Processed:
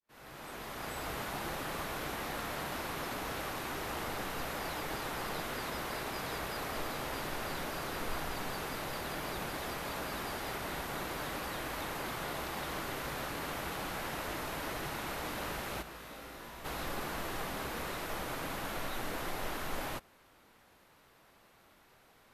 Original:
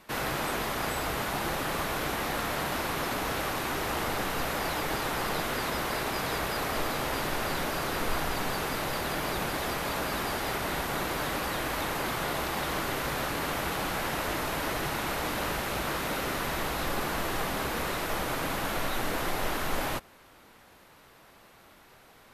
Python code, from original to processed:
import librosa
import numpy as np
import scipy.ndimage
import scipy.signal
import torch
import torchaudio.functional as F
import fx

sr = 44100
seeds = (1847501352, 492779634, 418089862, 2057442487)

y = fx.fade_in_head(x, sr, length_s=1.11)
y = fx.comb_fb(y, sr, f0_hz=57.0, decay_s=0.86, harmonics='all', damping=0.0, mix_pct=80, at=(15.81, 16.64), fade=0.02)
y = y * 10.0 ** (-7.5 / 20.0)